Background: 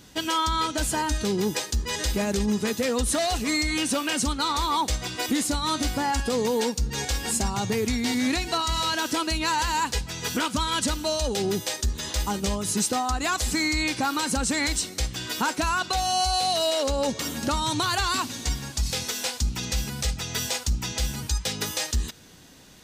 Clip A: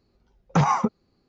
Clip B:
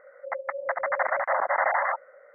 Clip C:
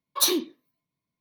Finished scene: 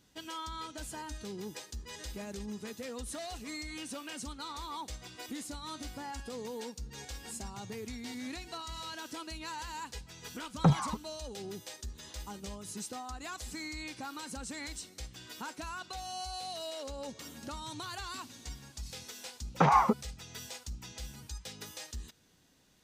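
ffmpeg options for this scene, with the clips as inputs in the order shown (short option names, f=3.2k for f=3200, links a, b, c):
-filter_complex "[1:a]asplit=2[a][b];[0:a]volume=-16.5dB[c];[a]aphaser=in_gain=1:out_gain=1:delay=1.1:decay=0.76:speed=1.8:type=triangular[d];[b]highpass=230,lowpass=3.2k[e];[d]atrim=end=1.28,asetpts=PTS-STARTPTS,volume=-14.5dB,afade=t=in:d=0.004:c=hsin,afade=t=out:st=1.276:d=0.004:c=hsin,adelay=10090[f];[e]atrim=end=1.28,asetpts=PTS-STARTPTS,volume=-1.5dB,afade=t=in:d=0.004:c=hsin,afade=t=out:st=1.276:d=0.004:c=hsin,adelay=19050[g];[c][f][g]amix=inputs=3:normalize=0"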